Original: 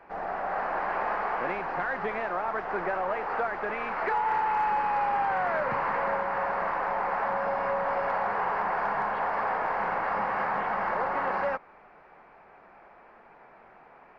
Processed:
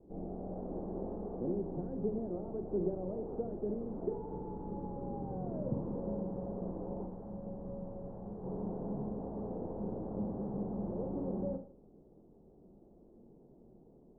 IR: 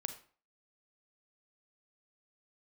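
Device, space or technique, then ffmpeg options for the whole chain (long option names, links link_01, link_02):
next room: -filter_complex "[0:a]asettb=1/sr,asplit=3[link_01][link_02][link_03];[link_01]atrim=end=7.064[link_04];[link_02]atrim=start=7.06:end=8.44,asetpts=PTS-STARTPTS,afade=type=in:duration=0.004:curve=qsin,afade=type=out:start_time=1.376:duration=0.004:curve=qsin,equalizer=frequency=400:width=0.33:gain=-7[link_05];[link_03]atrim=start=8.436[link_06];[link_04][link_05]acrossfade=duration=0.004:curve1=hsin:curve2=qsin[link_07];[link_07][link_06]acrossfade=duration=0.004:curve1=qsin:curve2=hsin,lowpass=frequency=360:width=0.5412,lowpass=frequency=360:width=1.3066[link_08];[1:a]atrim=start_sample=2205[link_09];[link_08][link_09]afir=irnorm=-1:irlink=0,volume=6.5dB"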